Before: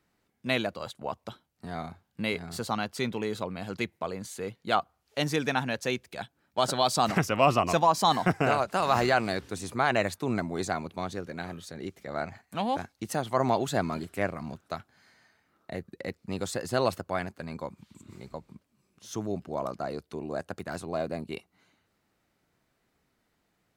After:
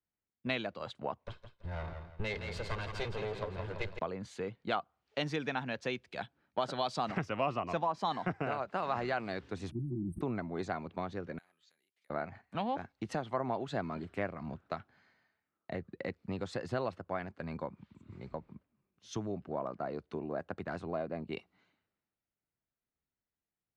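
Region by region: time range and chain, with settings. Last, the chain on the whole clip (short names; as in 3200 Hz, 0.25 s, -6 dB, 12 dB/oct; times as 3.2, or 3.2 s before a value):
1.24–3.99 minimum comb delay 1.9 ms + echo 0.157 s -18 dB + warbling echo 0.167 s, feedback 47%, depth 57 cents, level -8 dB
9.71–10.21 brick-wall FIR band-stop 370–8300 Hz + comb 5.9 ms, depth 56% + sustainer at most 41 dB/s
11.38–12.1 careless resampling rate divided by 4×, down filtered, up zero stuff + compressor 10:1, threshold -44 dBFS + band-pass 3900 Hz, Q 0.59
whole clip: LPF 3300 Hz 12 dB/oct; compressor 4:1, threshold -37 dBFS; three-band expander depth 70%; gain +3 dB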